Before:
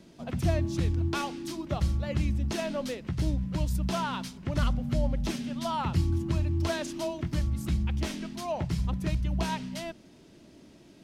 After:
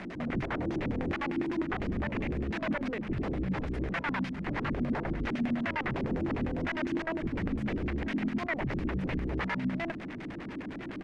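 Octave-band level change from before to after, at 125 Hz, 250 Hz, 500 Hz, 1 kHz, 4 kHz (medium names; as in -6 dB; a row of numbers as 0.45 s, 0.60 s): -7.0 dB, +1.5 dB, -1.5 dB, -2.0 dB, -6.5 dB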